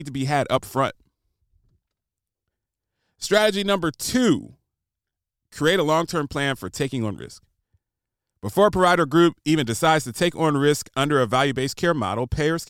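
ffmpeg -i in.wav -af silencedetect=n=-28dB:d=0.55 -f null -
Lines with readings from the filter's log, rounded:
silence_start: 0.90
silence_end: 3.22 | silence_duration: 2.32
silence_start: 4.41
silence_end: 5.57 | silence_duration: 1.16
silence_start: 7.26
silence_end: 8.44 | silence_duration: 1.18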